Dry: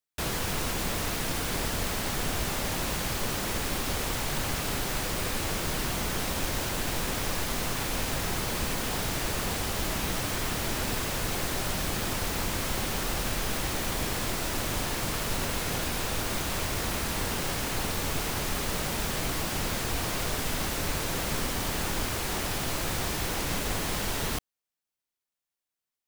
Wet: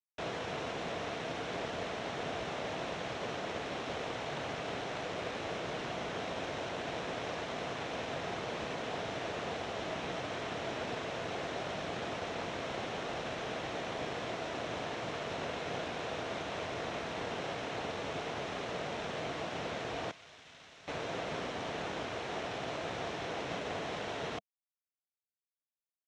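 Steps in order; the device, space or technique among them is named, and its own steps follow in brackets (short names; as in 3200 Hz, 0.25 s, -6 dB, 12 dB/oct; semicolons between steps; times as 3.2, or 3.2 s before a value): 20.11–20.88 passive tone stack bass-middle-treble 5-5-5; blown loudspeaker (crossover distortion -45 dBFS; speaker cabinet 140–5100 Hz, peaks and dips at 210 Hz -3 dB, 460 Hz +5 dB, 670 Hz +8 dB, 4700 Hz -9 dB); gain -5.5 dB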